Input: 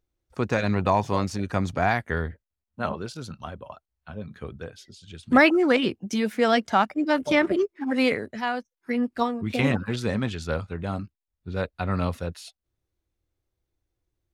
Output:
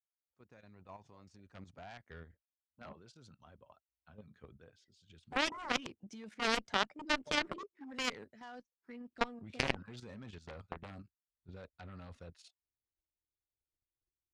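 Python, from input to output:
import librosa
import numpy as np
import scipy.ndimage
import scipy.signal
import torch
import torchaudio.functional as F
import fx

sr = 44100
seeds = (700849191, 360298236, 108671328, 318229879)

y = fx.fade_in_head(x, sr, length_s=4.32)
y = scipy.signal.sosfilt(scipy.signal.butter(4, 8400.0, 'lowpass', fs=sr, output='sos'), y)
y = fx.level_steps(y, sr, step_db=11)
y = fx.transient(y, sr, attack_db=9, sustain_db=-3, at=(10.37, 10.94), fade=0.02)
y = fx.cheby_harmonics(y, sr, harmonics=(5, 7), levels_db=(-28, -14), full_scale_db=-3.0)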